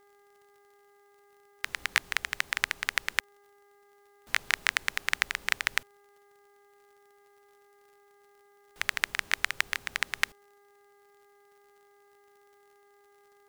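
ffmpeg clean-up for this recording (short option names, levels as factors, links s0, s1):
-af "adeclick=t=4,bandreject=f=405.1:t=h:w=4,bandreject=f=810.2:t=h:w=4,bandreject=f=1215.3:t=h:w=4,bandreject=f=1620.4:t=h:w=4,bandreject=f=2025.5:t=h:w=4"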